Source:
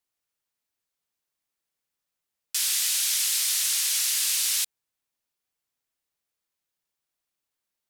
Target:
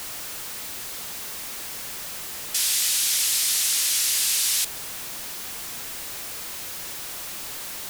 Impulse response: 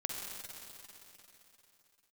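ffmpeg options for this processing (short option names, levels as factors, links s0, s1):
-af "aeval=exprs='val(0)+0.5*0.0422*sgn(val(0))':c=same"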